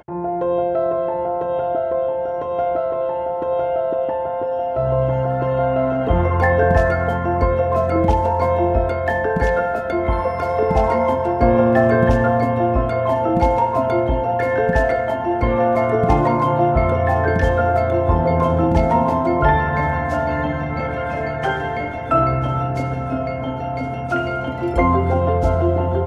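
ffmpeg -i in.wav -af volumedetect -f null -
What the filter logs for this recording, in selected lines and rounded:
mean_volume: -18.0 dB
max_volume: -2.3 dB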